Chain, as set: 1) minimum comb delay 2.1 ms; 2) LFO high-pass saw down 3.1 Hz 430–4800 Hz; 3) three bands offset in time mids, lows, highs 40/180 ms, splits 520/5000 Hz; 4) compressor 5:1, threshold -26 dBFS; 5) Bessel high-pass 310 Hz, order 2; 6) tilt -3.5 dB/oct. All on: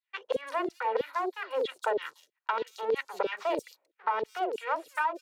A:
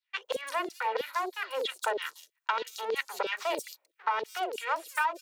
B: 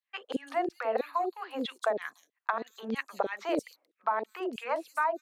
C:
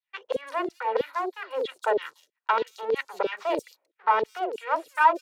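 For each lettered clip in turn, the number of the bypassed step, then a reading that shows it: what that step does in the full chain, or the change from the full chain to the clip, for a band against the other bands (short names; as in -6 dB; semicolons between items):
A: 6, 8 kHz band +10.5 dB; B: 1, 250 Hz band +6.0 dB; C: 4, mean gain reduction 2.0 dB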